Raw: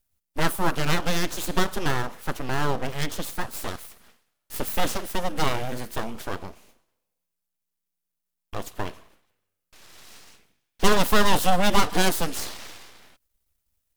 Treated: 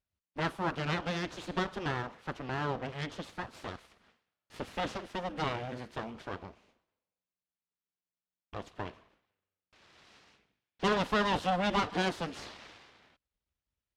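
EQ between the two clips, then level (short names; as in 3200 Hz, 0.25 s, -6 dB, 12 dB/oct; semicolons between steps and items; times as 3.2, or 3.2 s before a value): HPF 45 Hz; LPF 3800 Hz 12 dB/oct; -7.5 dB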